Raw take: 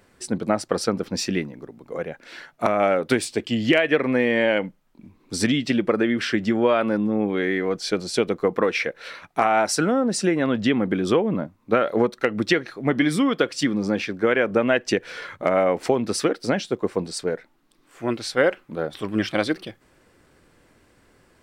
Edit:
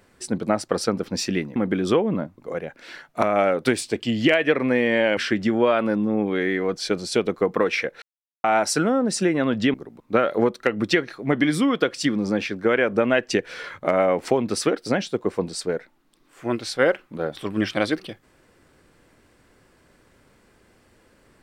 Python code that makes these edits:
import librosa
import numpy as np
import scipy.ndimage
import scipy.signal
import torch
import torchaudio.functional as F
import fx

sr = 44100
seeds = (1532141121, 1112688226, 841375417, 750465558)

y = fx.edit(x, sr, fx.swap(start_s=1.56, length_s=0.26, other_s=10.76, other_length_s=0.82),
    fx.cut(start_s=4.61, length_s=1.58),
    fx.silence(start_s=9.04, length_s=0.42), tone=tone)